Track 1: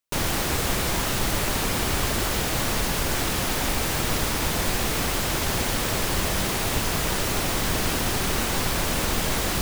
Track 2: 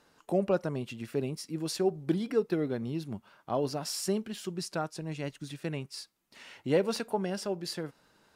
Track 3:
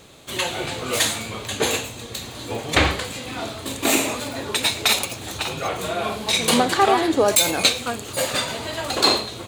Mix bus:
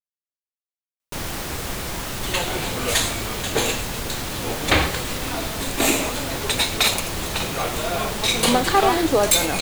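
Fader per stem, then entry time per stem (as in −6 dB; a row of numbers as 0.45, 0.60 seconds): −4.0 dB, muted, −0.5 dB; 1.00 s, muted, 1.95 s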